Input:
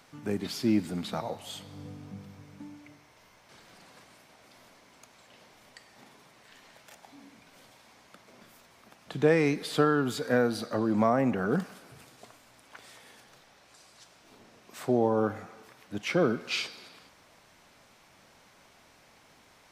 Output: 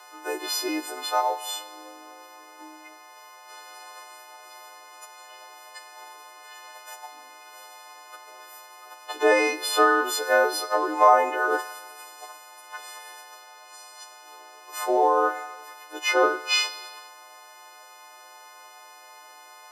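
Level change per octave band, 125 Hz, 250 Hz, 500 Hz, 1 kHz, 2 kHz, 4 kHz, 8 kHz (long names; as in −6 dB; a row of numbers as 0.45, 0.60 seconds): below −40 dB, −5.5 dB, +4.0 dB, +12.5 dB, +10.0 dB, +9.0 dB, +12.5 dB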